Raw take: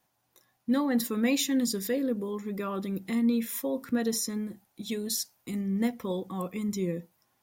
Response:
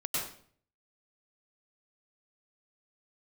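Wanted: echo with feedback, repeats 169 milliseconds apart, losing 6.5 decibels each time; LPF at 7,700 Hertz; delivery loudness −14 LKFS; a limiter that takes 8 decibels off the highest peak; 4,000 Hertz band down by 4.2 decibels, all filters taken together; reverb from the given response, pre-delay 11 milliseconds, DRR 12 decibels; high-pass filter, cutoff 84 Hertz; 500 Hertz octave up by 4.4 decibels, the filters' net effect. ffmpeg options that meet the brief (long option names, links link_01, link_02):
-filter_complex "[0:a]highpass=84,lowpass=7700,equalizer=frequency=500:width_type=o:gain=5,equalizer=frequency=4000:width_type=o:gain=-5,alimiter=limit=-22dB:level=0:latency=1,aecho=1:1:169|338|507|676|845|1014:0.473|0.222|0.105|0.0491|0.0231|0.0109,asplit=2[link_01][link_02];[1:a]atrim=start_sample=2205,adelay=11[link_03];[link_02][link_03]afir=irnorm=-1:irlink=0,volume=-17.5dB[link_04];[link_01][link_04]amix=inputs=2:normalize=0,volume=16.5dB"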